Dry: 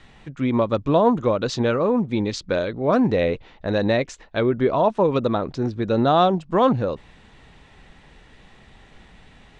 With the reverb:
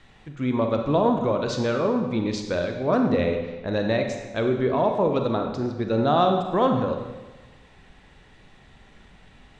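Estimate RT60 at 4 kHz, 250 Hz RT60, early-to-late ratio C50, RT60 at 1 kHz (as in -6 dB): 1.1 s, 1.3 s, 5.5 dB, 1.2 s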